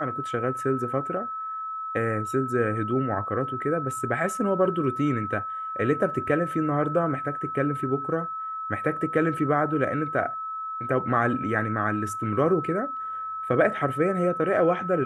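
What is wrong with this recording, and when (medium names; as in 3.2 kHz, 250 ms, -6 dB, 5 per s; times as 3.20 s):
whine 1.3 kHz -30 dBFS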